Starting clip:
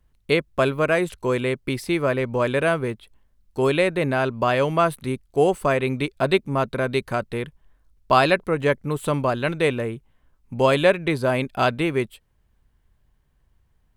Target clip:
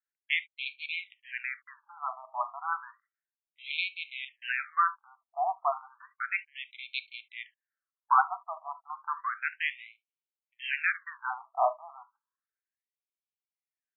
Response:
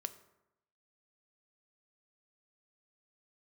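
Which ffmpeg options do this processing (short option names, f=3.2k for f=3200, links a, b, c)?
-filter_complex "[0:a]adynamicsmooth=sensitivity=3.5:basefreq=810[a];[1:a]atrim=start_sample=2205,atrim=end_sample=3528[b];[a][b]afir=irnorm=-1:irlink=0,afftfilt=real='re*between(b*sr/1024,900*pow(3100/900,0.5+0.5*sin(2*PI*0.32*pts/sr))/1.41,900*pow(3100/900,0.5+0.5*sin(2*PI*0.32*pts/sr))*1.41)':imag='im*between(b*sr/1024,900*pow(3100/900,0.5+0.5*sin(2*PI*0.32*pts/sr))/1.41,900*pow(3100/900,0.5+0.5*sin(2*PI*0.32*pts/sr))*1.41)':win_size=1024:overlap=0.75"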